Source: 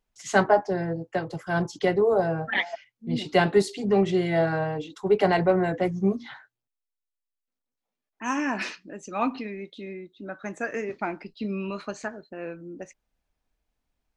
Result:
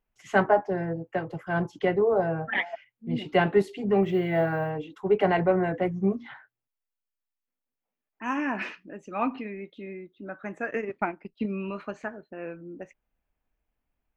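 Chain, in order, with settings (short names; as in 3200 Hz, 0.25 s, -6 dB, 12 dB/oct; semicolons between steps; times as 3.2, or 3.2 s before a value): 4.03–4.7 companded quantiser 8-bit; 10.67–11.46 transient shaper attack +5 dB, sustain -11 dB; band shelf 6200 Hz -14 dB; gain -1.5 dB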